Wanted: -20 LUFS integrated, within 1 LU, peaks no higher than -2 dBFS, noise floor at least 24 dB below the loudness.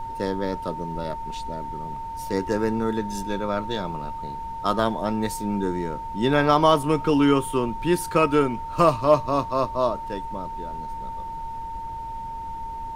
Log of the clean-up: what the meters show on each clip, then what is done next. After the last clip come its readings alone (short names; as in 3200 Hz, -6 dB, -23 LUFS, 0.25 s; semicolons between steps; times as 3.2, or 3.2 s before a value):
steady tone 910 Hz; tone level -31 dBFS; noise floor -33 dBFS; noise floor target -49 dBFS; loudness -25.0 LUFS; peak -4.5 dBFS; loudness target -20.0 LUFS
-> notch 910 Hz, Q 30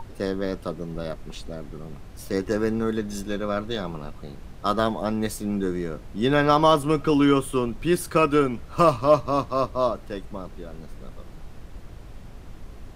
steady tone none; noise floor -42 dBFS; noise floor target -48 dBFS
-> noise print and reduce 6 dB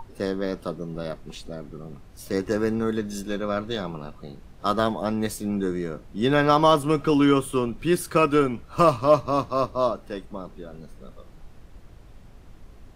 noise floor -48 dBFS; loudness -24.0 LUFS; peak -5.0 dBFS; loudness target -20.0 LUFS
-> gain +4 dB; limiter -2 dBFS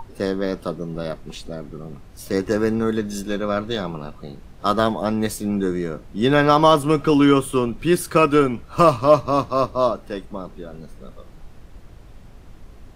loudness -20.0 LUFS; peak -2.0 dBFS; noise floor -44 dBFS